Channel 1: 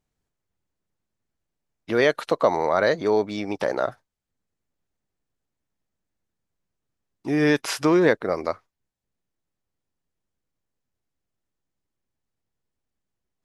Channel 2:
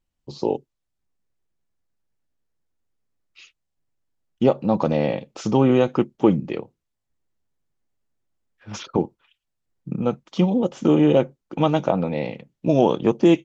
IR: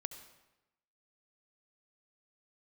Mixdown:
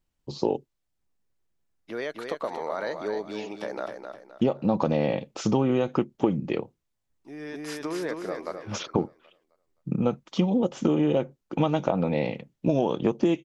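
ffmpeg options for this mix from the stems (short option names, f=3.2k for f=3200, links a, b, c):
-filter_complex "[0:a]highpass=160,acompressor=threshold=-19dB:ratio=6,volume=-7.5dB,asplit=2[a][b];[b]volume=-7dB[c];[1:a]acompressor=threshold=-19dB:ratio=12,volume=0.5dB,asplit=2[d][e];[e]apad=whole_len=593002[f];[a][f]sidechaincompress=threshold=-44dB:ratio=4:attack=16:release=962[g];[c]aecho=0:1:260|520|780|1040|1300:1|0.34|0.116|0.0393|0.0134[h];[g][d][h]amix=inputs=3:normalize=0"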